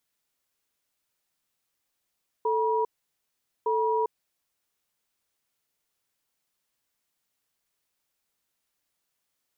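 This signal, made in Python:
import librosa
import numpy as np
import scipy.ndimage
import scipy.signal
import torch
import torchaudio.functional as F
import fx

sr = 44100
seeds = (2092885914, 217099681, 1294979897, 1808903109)

y = fx.cadence(sr, length_s=1.96, low_hz=441.0, high_hz=961.0, on_s=0.4, off_s=0.81, level_db=-25.0)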